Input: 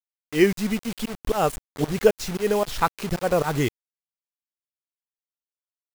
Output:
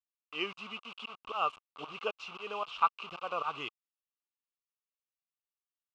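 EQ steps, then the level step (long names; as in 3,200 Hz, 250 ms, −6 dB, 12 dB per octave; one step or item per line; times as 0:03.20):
pair of resonant band-passes 1,800 Hz, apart 1.2 octaves
high-frequency loss of the air 100 metres
+2.5 dB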